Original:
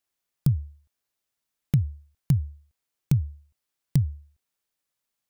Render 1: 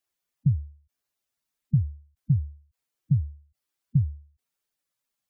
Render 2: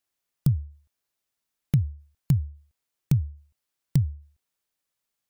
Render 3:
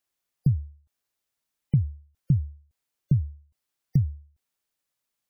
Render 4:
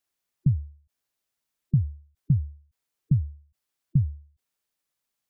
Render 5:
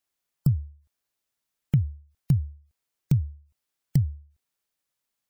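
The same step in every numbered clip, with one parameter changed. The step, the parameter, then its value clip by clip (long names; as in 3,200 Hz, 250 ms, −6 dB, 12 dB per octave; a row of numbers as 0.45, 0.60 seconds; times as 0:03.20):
gate on every frequency bin, under each frame's peak: −10, −60, −35, −20, −45 decibels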